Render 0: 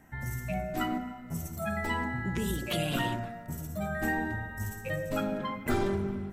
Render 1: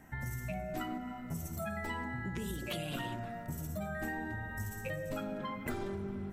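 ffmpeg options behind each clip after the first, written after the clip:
-af "acompressor=threshold=0.0141:ratio=5,volume=1.12"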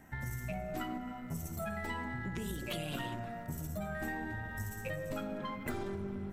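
-af "aeval=exprs='if(lt(val(0),0),0.708*val(0),val(0))':c=same,volume=1.12"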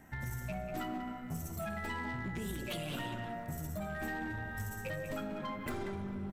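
-filter_complex "[0:a]asplit=2[s0][s1];[s1]adelay=190,highpass=300,lowpass=3400,asoftclip=type=hard:threshold=0.0224,volume=0.447[s2];[s0][s2]amix=inputs=2:normalize=0,asoftclip=type=hard:threshold=0.0237"

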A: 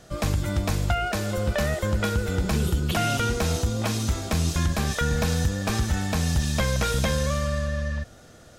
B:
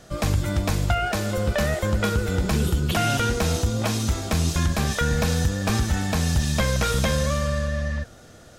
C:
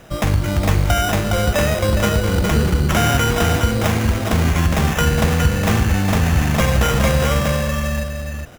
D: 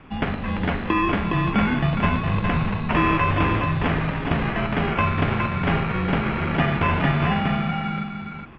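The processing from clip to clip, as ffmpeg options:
-af "flanger=delay=3.2:depth=7.6:regen=89:speed=1.5:shape=triangular,volume=2.11"
-filter_complex "[0:a]asplit=2[s0][s1];[s1]aecho=0:1:413:0.531[s2];[s0][s2]amix=inputs=2:normalize=0,acrusher=samples=10:mix=1:aa=0.000001,volume=1.78"
-af "highpass=f=200:t=q:w=0.5412,highpass=f=200:t=q:w=1.307,lowpass=f=3400:t=q:w=0.5176,lowpass=f=3400:t=q:w=0.7071,lowpass=f=3400:t=q:w=1.932,afreqshift=-380,bandreject=f=59.4:t=h:w=4,bandreject=f=118.8:t=h:w=4,bandreject=f=178.2:t=h:w=4,bandreject=f=237.6:t=h:w=4,bandreject=f=297:t=h:w=4,bandreject=f=356.4:t=h:w=4,bandreject=f=415.8:t=h:w=4,bandreject=f=475.2:t=h:w=4,bandreject=f=534.6:t=h:w=4,bandreject=f=594:t=h:w=4,bandreject=f=653.4:t=h:w=4,bandreject=f=712.8:t=h:w=4,bandreject=f=772.2:t=h:w=4,bandreject=f=831.6:t=h:w=4,bandreject=f=891:t=h:w=4,bandreject=f=950.4:t=h:w=4,bandreject=f=1009.8:t=h:w=4,bandreject=f=1069.2:t=h:w=4,bandreject=f=1128.6:t=h:w=4,bandreject=f=1188:t=h:w=4,bandreject=f=1247.4:t=h:w=4,bandreject=f=1306.8:t=h:w=4,bandreject=f=1366.2:t=h:w=4,bandreject=f=1425.6:t=h:w=4,bandreject=f=1485:t=h:w=4,bandreject=f=1544.4:t=h:w=4,bandreject=f=1603.8:t=h:w=4,bandreject=f=1663.2:t=h:w=4,bandreject=f=1722.6:t=h:w=4,bandreject=f=1782:t=h:w=4,bandreject=f=1841.4:t=h:w=4,bandreject=f=1900.8:t=h:w=4,bandreject=f=1960.2:t=h:w=4,bandreject=f=2019.6:t=h:w=4,bandreject=f=2079:t=h:w=4"

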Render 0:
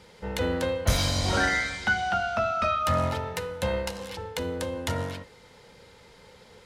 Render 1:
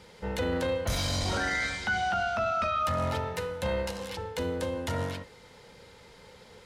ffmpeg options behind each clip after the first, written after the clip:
-af "alimiter=limit=0.0891:level=0:latency=1:release=17"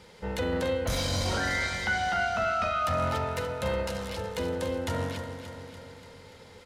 -af "aecho=1:1:290|580|870|1160|1450|1740|2030:0.355|0.209|0.124|0.0729|0.043|0.0254|0.015"

